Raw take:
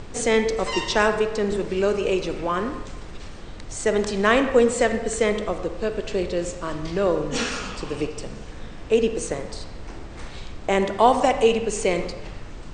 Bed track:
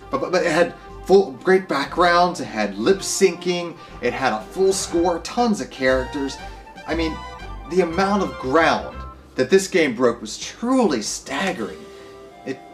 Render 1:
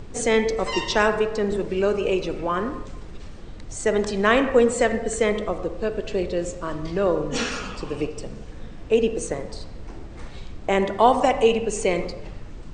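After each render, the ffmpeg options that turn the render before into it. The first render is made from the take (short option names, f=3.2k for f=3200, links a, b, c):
-af "afftdn=nr=6:nf=-38"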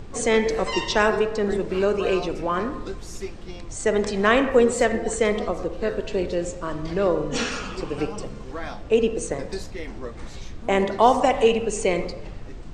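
-filter_complex "[1:a]volume=-18.5dB[a];[0:a][a]amix=inputs=2:normalize=0"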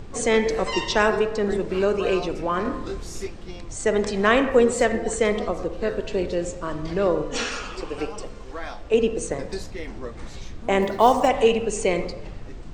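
-filter_complex "[0:a]asettb=1/sr,asplit=3[a][b][c];[a]atrim=end=2.624[d];[b]atrim=start=2.62:end=3.27,asetpts=PTS-STARTPTS,afade=t=in:d=0.004:c=qsin,afade=t=out:st=0.646:d=0.004:c=qsin,asplit=2[e][f];[f]adelay=28,volume=-2.5dB[g];[e][g]amix=inputs=2:normalize=0,atrim=end_sample=28665[h];[c]atrim=start=3.266[i];[d][h]acrossfade=d=0.004:c1=hsin:c2=qsin[j];[j][i]acrossfade=d=0.004:c1=qsin:c2=hsin,asettb=1/sr,asplit=3[k][l][m];[k]atrim=end=7.234[n];[l]atrim=start=7.23:end=8.94,asetpts=PTS-STARTPTS,afade=t=in:d=0.004:c=qsin,afade=t=out:st=1.706:d=0.004:c=qsin,equalizer=f=160:w=0.94:g=-10[o];[m]atrim=start=8.936[p];[n][o]acrossfade=d=0.004:c1=hsin:c2=qsin[q];[q][p]acrossfade=d=0.004:c1=qsin:c2=hsin,asplit=3[r][s][t];[r]afade=t=out:st=10.81:d=0.02[u];[s]acrusher=bits=8:mode=log:mix=0:aa=0.000001,afade=t=in:st=10.81:d=0.02,afade=t=out:st=11.27:d=0.02[v];[t]afade=t=in:st=11.27:d=0.02[w];[u][v][w]amix=inputs=3:normalize=0"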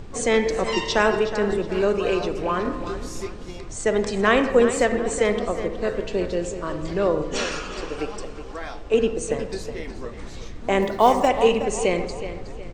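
-filter_complex "[0:a]asplit=2[a][b];[b]adelay=368,lowpass=f=5k:p=1,volume=-11dB,asplit=2[c][d];[d]adelay=368,lowpass=f=5k:p=1,volume=0.39,asplit=2[e][f];[f]adelay=368,lowpass=f=5k:p=1,volume=0.39,asplit=2[g][h];[h]adelay=368,lowpass=f=5k:p=1,volume=0.39[i];[a][c][e][g][i]amix=inputs=5:normalize=0"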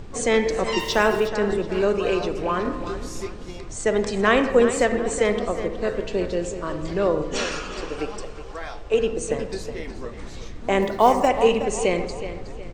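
-filter_complex "[0:a]asplit=3[a][b][c];[a]afade=t=out:st=0.78:d=0.02[d];[b]aeval=exprs='val(0)*gte(abs(val(0)),0.0178)':c=same,afade=t=in:st=0.78:d=0.02,afade=t=out:st=1.27:d=0.02[e];[c]afade=t=in:st=1.27:d=0.02[f];[d][e][f]amix=inputs=3:normalize=0,asettb=1/sr,asplit=3[g][h][i];[g]atrim=end=8.214[j];[h]atrim=start=8.21:end=9.09,asetpts=PTS-STARTPTS,afade=t=in:d=0.004:c=qsin,afade=t=out:st=0.876:d=0.004:c=qsin,equalizer=f=260:t=o:w=0.51:g=-8.5[k];[i]atrim=start=9.086[l];[j][k]acrossfade=d=0.004:c1=hsin:c2=qsin[m];[m][l]acrossfade=d=0.004:c1=qsin:c2=hsin,asettb=1/sr,asplit=3[n][o][p];[n]atrim=end=11.024[q];[o]atrim=start=11.02:end=11.49,asetpts=PTS-STARTPTS,afade=t=in:d=0.004:c=qsin,afade=t=out:st=0.466:d=0.004:c=qsin,equalizer=f=3.5k:t=o:w=0.3:g=-6.5[r];[p]atrim=start=11.486[s];[q][r]acrossfade=d=0.004:c1=hsin:c2=qsin[t];[t][s]acrossfade=d=0.004:c1=qsin:c2=hsin"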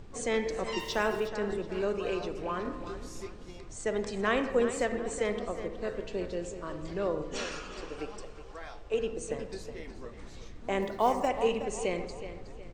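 -af "volume=-10dB"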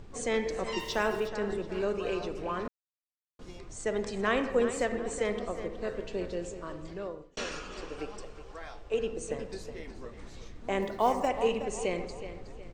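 -filter_complex "[0:a]asplit=4[a][b][c][d];[a]atrim=end=2.68,asetpts=PTS-STARTPTS,afade=t=out:st=2.676:d=0.004:c=hsin[e];[b]atrim=start=2.68:end=3.39,asetpts=PTS-STARTPTS,volume=0[f];[c]atrim=start=3.39:end=7.37,asetpts=PTS-STARTPTS,afade=t=in:d=0.004:c=hsin,afade=t=out:st=2.89:d=1.09:c=qsin[g];[d]atrim=start=7.37,asetpts=PTS-STARTPTS,afade=t=in:d=0.004:c=hsin[h];[e][f][g][h]concat=n=4:v=0:a=1"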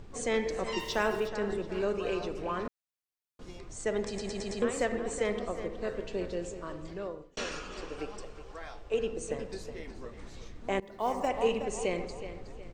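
-filter_complex "[0:a]asplit=7[a][b][c][d][e][f][g];[a]atrim=end=4.182[h];[b]atrim=start=4.068:end=4.182[i];[c]atrim=start=4.068:end=4.182[j];[d]atrim=start=4.068:end=4.182[k];[e]atrim=start=4.068:end=4.182[l];[f]atrim=start=4.618:end=10.8,asetpts=PTS-STARTPTS,afade=t=out:st=6.178:d=0.004:c=hsin:silence=0.0707946[m];[g]atrim=start=10.8,asetpts=PTS-STARTPTS,afade=t=in:d=0.75:c=qsin:silence=0.0707946[n];[h][i]acrossfade=d=0.004:c1=hsin:c2=hsin[o];[o][j]acrossfade=d=0.004:c1=hsin:c2=hsin[p];[p][k]acrossfade=d=0.004:c1=hsin:c2=hsin[q];[q][l]acrossfade=d=0.004:c1=hsin:c2=hsin[r];[m][n]concat=n=2:v=0:a=1[s];[r][s]acrossfade=d=0.004:c1=hsin:c2=hsin"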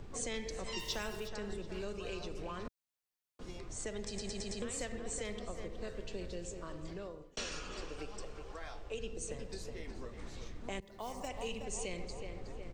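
-filter_complex "[0:a]acrossover=split=140|3000[a][b][c];[b]acompressor=threshold=-45dB:ratio=3[d];[a][d][c]amix=inputs=3:normalize=0"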